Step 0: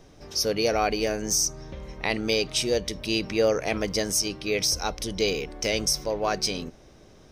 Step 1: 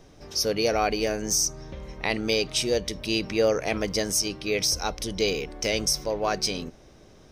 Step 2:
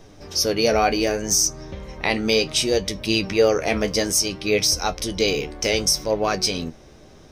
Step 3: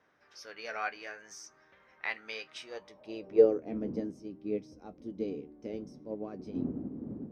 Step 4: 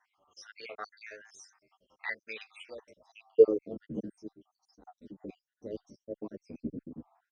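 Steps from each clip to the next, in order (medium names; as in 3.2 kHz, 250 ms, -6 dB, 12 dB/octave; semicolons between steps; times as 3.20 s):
no audible change
flange 0.65 Hz, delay 9.1 ms, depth 4.9 ms, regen +51%; trim +9 dB
wind noise 280 Hz -33 dBFS; band-pass sweep 1.6 kHz -> 260 Hz, 2.57–3.64 s; upward expansion 1.5:1, over -37 dBFS
random holes in the spectrogram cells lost 69%; resampled via 22.05 kHz; endless flanger 9.3 ms -2.6 Hz; trim +3.5 dB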